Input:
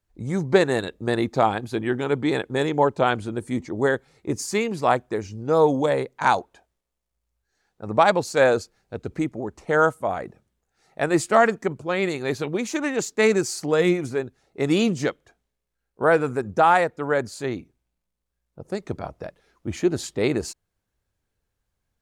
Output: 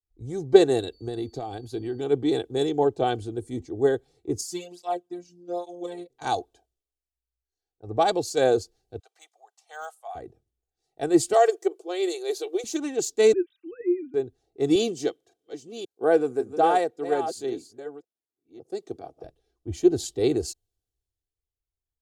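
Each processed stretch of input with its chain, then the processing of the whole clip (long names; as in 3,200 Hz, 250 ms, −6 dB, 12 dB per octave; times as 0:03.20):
0:00.92–0:01.99: downward compressor, threshold −22 dBFS + steady tone 4,500 Hz −53 dBFS
0:04.41–0:06.10: phases set to zero 176 Hz + through-zero flanger with one copy inverted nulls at 1.2 Hz, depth 2.6 ms
0:08.99–0:10.15: Butterworth high-pass 730 Hz + de-essing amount 85%
0:11.33–0:12.64: linear-phase brick-wall high-pass 320 Hz + high-shelf EQ 5,400 Hz +6 dB + notch filter 1,700 Hz, Q 19
0:13.33–0:14.14: three sine waves on the formant tracks + Butterworth band-reject 650 Hz, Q 0.52 + low-shelf EQ 500 Hz +5 dB
0:14.75–0:19.24: delay that plays each chunk backwards 549 ms, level −8 dB + high-pass filter 200 Hz
whole clip: flat-topped bell 1,500 Hz −11.5 dB; comb filter 2.6 ms, depth 67%; multiband upward and downward expander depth 40%; level −3.5 dB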